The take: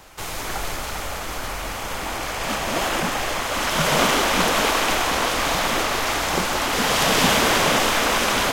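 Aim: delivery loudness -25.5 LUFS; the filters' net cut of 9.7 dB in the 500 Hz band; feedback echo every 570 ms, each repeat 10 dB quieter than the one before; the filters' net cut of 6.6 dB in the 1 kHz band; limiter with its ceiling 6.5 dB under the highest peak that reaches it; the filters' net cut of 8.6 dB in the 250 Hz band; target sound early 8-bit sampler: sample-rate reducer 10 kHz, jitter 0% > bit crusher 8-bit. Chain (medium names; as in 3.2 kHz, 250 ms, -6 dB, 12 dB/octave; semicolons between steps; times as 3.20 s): peaking EQ 250 Hz -9 dB; peaking EQ 500 Hz -8.5 dB; peaking EQ 1 kHz -5.5 dB; peak limiter -14 dBFS; feedback delay 570 ms, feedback 32%, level -10 dB; sample-rate reducer 10 kHz, jitter 0%; bit crusher 8-bit; trim -1.5 dB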